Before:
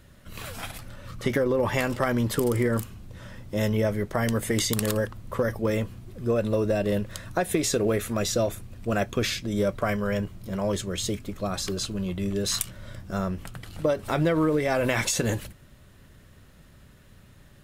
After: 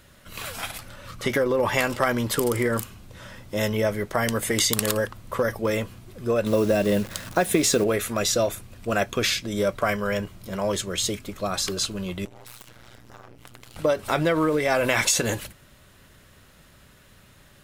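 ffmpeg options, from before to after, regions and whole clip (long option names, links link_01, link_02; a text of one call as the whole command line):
ffmpeg -i in.wav -filter_complex "[0:a]asettb=1/sr,asplit=3[link_01][link_02][link_03];[link_01]atrim=end=6.464[link_04];[link_02]atrim=start=6.46:end=7.84,asetpts=PTS-STARTPTS,afade=type=in:duration=0.004:curve=qsin,afade=type=out:start_time=1.376:duration=0.004:curve=qsin,equalizer=frequency=220:width=0.89:gain=6,acrusher=bits=8:dc=4:mix=0:aa=0.000001[link_05];[link_03]atrim=start=7.836[link_06];[link_04][link_05]acrossfade=duration=0.004:curve1=hsin:curve2=qsin[link_07];[link_07][link_06]acrossfade=duration=0.004:curve1=qsin:curve2=hsin,asettb=1/sr,asplit=3[link_08][link_09][link_10];[link_08]atrim=end=12.254[link_11];[link_09]atrim=start=12.25:end=13.76,asetpts=PTS-STARTPTS,afade=type=in:duration=0.004:curve=qsin,afade=type=out:start_time=1.506:duration=0.004:curve=qsin,tremolo=f=120:d=0.974,acompressor=threshold=-40dB:ratio=12:attack=3.2:release=140:knee=1:detection=peak,aeval=exprs='abs(val(0))':channel_layout=same[link_12];[link_10]atrim=start=13.756[link_13];[link_11][link_12]acrossfade=duration=0.004:curve1=hsin:curve2=qsin[link_14];[link_14][link_13]acrossfade=duration=0.004:curve1=qsin:curve2=hsin,lowshelf=frequency=410:gain=-9,bandreject=frequency=1800:width=29,volume=5.5dB" out.wav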